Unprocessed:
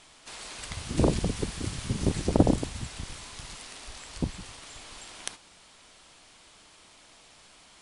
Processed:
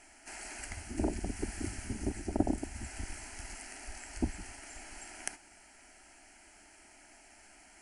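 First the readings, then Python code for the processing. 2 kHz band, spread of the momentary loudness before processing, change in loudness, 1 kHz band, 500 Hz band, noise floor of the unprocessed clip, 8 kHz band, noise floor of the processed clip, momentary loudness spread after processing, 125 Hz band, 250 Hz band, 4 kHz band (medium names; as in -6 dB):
-2.5 dB, 19 LU, -8.5 dB, -6.5 dB, -10.0 dB, -56 dBFS, -3.5 dB, -59 dBFS, 21 LU, -11.5 dB, -7.0 dB, -11.5 dB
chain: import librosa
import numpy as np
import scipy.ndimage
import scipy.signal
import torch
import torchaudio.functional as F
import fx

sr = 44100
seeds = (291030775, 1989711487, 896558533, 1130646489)

y = fx.rider(x, sr, range_db=4, speed_s=0.5)
y = fx.fixed_phaser(y, sr, hz=740.0, stages=8)
y = y * librosa.db_to_amplitude(-3.0)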